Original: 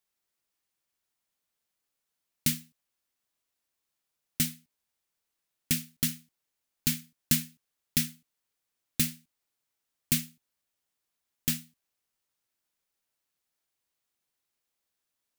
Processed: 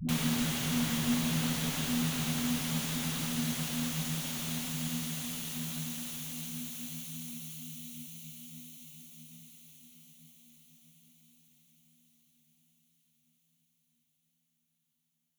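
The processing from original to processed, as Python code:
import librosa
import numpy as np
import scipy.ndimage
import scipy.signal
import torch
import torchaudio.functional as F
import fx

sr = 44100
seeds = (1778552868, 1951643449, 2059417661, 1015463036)

p1 = fx.high_shelf(x, sr, hz=11000.0, db=6.5)
p2 = fx.leveller(p1, sr, passes=2)
p3 = fx.env_flanger(p2, sr, rest_ms=11.9, full_db=-19.0)
p4 = fx.paulstretch(p3, sr, seeds[0], factor=43.0, window_s=0.5, from_s=6.09)
p5 = fx.dispersion(p4, sr, late='highs', ms=88.0, hz=360.0)
p6 = p5 + fx.echo_diffused(p5, sr, ms=646, feedback_pct=68, wet_db=-13.5, dry=0)
p7 = fx.slew_limit(p6, sr, full_power_hz=150.0)
y = p7 * librosa.db_to_amplitude(-1.5)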